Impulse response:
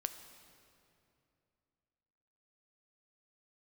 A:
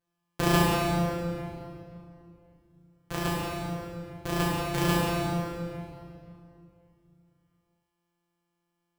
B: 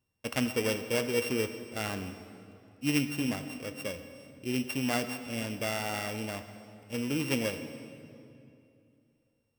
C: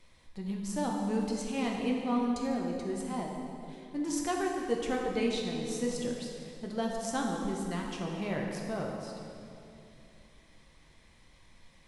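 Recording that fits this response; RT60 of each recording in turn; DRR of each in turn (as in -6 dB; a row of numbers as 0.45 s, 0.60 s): B; 2.7 s, 2.7 s, 2.7 s; -7.5 dB, 8.5 dB, -1.0 dB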